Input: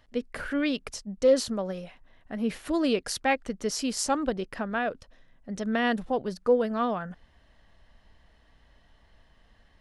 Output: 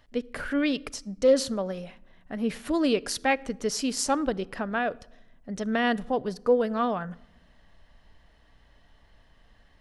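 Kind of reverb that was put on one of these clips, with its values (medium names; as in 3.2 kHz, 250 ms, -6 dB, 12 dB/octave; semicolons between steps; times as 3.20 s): simulated room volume 2900 m³, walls furnished, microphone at 0.33 m; trim +1 dB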